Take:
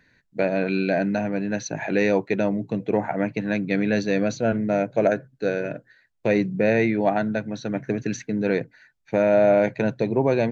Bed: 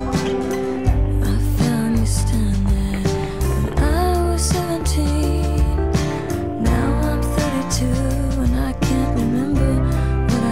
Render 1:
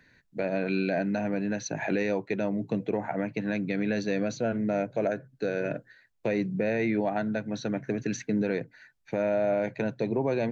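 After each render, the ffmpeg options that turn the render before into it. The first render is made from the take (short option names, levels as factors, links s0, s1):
-filter_complex "[0:a]acrossover=split=100[s0][s1];[s0]acompressor=threshold=0.00251:ratio=6[s2];[s1]alimiter=limit=0.126:level=0:latency=1:release=264[s3];[s2][s3]amix=inputs=2:normalize=0"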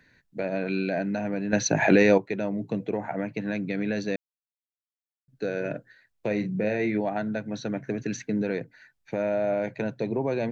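-filter_complex "[0:a]asettb=1/sr,asplit=3[s0][s1][s2];[s0]atrim=end=6.274[s3];[s1]atrim=start=6.27:end=6.98,asetpts=PTS-STARTPTS,afade=t=in:d=0.004:c=qsin,afade=t=out:st=0.706:d=0.004:c=qsin,asplit=2[s4][s5];[s5]adelay=38,volume=0.376[s6];[s4][s6]amix=inputs=2:normalize=0,atrim=end_sample=31311[s7];[s2]atrim=start=6.976[s8];[s3][s7]acrossfade=d=0.004:c1=hsin:c2=qsin[s9];[s9][s8]acrossfade=d=0.004:c1=qsin:c2=hsin,asplit=5[s10][s11][s12][s13][s14];[s10]atrim=end=1.532[s15];[s11]atrim=start=1.528:end=2.182,asetpts=PTS-STARTPTS,volume=2.99[s16];[s12]atrim=start=2.178:end=4.16,asetpts=PTS-STARTPTS,afade=t=out:st=1.978:d=0.004:c=hsin[s17];[s13]atrim=start=4.16:end=5.28,asetpts=PTS-STARTPTS,volume=0[s18];[s14]atrim=start=5.28,asetpts=PTS-STARTPTS,afade=t=in:d=0.004:c=hsin[s19];[s15][s16]acrossfade=d=0.004:c1=hsin:c2=hsin[s20];[s17][s18][s19]concat=n=3:v=0:a=1[s21];[s20][s21]acrossfade=d=0.004:c1=hsin:c2=hsin"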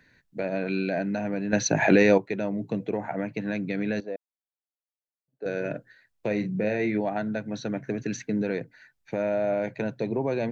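-filter_complex "[0:a]asettb=1/sr,asplit=3[s0][s1][s2];[s0]atrim=end=4.004[s3];[s1]atrim=start=4:end=5.46,asetpts=PTS-STARTPTS,afade=t=in:d=0.004:c=qsin,afade=t=out:st=1.456:d=0.004:c=qsin,bandpass=f=620:t=q:w=1.8[s4];[s2]atrim=start=5.456[s5];[s3][s4]acrossfade=d=0.004:c1=hsin:c2=qsin[s6];[s6][s5]acrossfade=d=0.004:c1=qsin:c2=hsin"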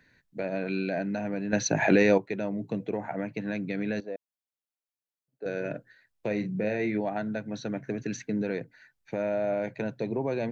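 -af "volume=0.75"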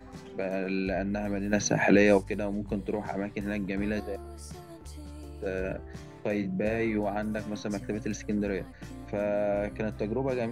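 -filter_complex "[1:a]volume=0.0562[s0];[0:a][s0]amix=inputs=2:normalize=0"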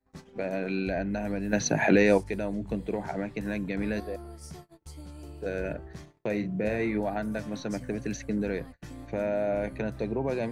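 -af "agate=range=0.0251:threshold=0.00708:ratio=16:detection=peak"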